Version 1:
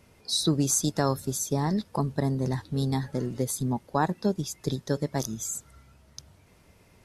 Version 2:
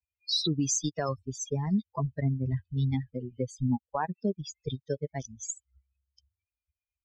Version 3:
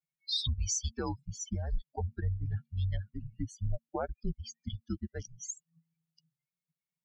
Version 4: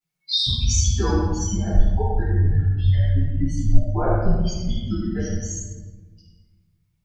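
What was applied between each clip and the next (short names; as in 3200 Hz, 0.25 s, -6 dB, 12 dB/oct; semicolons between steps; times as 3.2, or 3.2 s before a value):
per-bin expansion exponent 3; Chebyshev low-pass 6900 Hz, order 5; limiter -25 dBFS, peak gain reduction 9.5 dB; gain +6 dB
frequency shift -230 Hz; gain -4 dB
reverb RT60 1.3 s, pre-delay 4 ms, DRR -13 dB; gain -2.5 dB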